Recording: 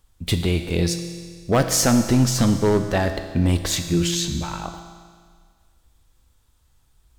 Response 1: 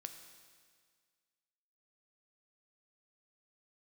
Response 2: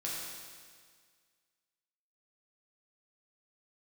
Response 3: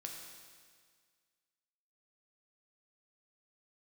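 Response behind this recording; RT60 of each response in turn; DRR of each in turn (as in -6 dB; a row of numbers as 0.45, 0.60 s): 1; 1.8, 1.8, 1.8 s; 6.5, -6.0, 0.5 dB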